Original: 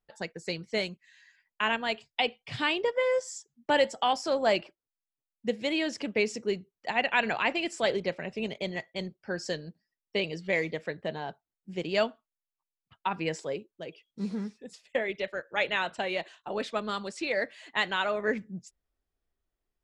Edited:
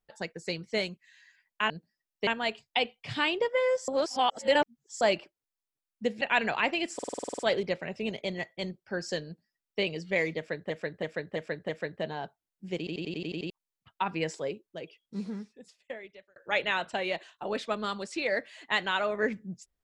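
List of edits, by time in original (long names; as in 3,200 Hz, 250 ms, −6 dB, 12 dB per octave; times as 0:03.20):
0:03.31–0:04.44: reverse
0:05.64–0:07.03: remove
0:07.76: stutter 0.05 s, 10 plays
0:09.62–0:10.19: duplicate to 0:01.70
0:10.74–0:11.07: repeat, 5 plays
0:11.83: stutter in place 0.09 s, 8 plays
0:13.87–0:15.41: fade out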